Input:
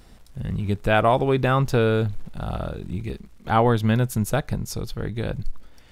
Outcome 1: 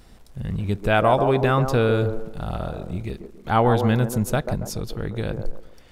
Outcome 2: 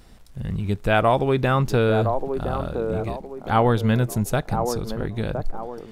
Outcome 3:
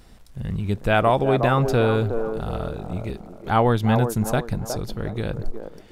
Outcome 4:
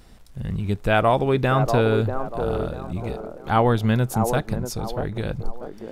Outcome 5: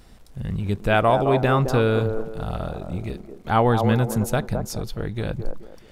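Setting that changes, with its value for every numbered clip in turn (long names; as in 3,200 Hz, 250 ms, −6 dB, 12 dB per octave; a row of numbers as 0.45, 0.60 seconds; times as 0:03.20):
delay with a band-pass on its return, delay time: 139, 1,014, 364, 640, 215 milliseconds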